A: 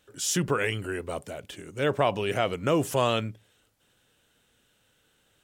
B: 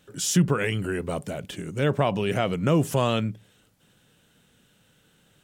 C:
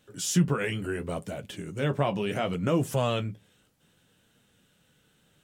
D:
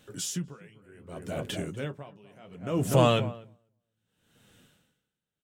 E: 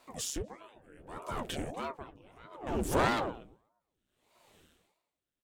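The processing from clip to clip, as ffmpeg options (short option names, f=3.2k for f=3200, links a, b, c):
-filter_complex "[0:a]equalizer=f=170:w=1.3:g=10.5,asplit=2[a][b];[b]acompressor=threshold=-30dB:ratio=6,volume=1.5dB[c];[a][c]amix=inputs=2:normalize=0,volume=-3dB"
-af "flanger=delay=8.3:depth=6.8:regen=-38:speed=0.69:shape=triangular"
-filter_complex "[0:a]asplit=2[a][b];[b]adelay=246,lowpass=f=1.2k:p=1,volume=-8dB,asplit=2[c][d];[d]adelay=246,lowpass=f=1.2k:p=1,volume=0.28,asplit=2[e][f];[f]adelay=246,lowpass=f=1.2k:p=1,volume=0.28[g];[a][c][e][g]amix=inputs=4:normalize=0,aeval=exprs='val(0)*pow(10,-31*(0.5-0.5*cos(2*PI*0.66*n/s))/20)':c=same,volume=5.5dB"
-af "aeval=exprs='clip(val(0),-1,0.0376)':c=same,aeval=exprs='val(0)*sin(2*PI*450*n/s+450*0.85/1.6*sin(2*PI*1.6*n/s))':c=same"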